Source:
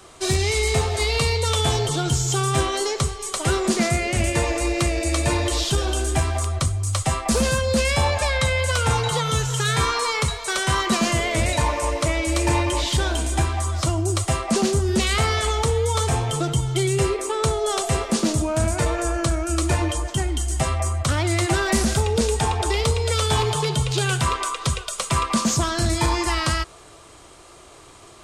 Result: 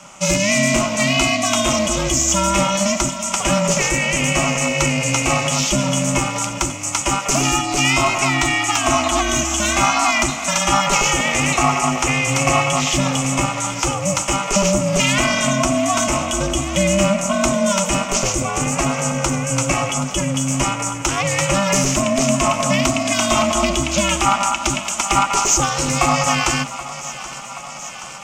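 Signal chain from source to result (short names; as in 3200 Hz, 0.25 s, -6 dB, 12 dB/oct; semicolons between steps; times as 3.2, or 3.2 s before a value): ripple EQ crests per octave 0.75, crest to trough 15 dB; in parallel at -11 dB: hard clip -14.5 dBFS, distortion -13 dB; on the sum: low shelf 420 Hz -8.5 dB; thinning echo 0.777 s, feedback 75%, high-pass 260 Hz, level -14.5 dB; ring modulator 200 Hz; gain +5 dB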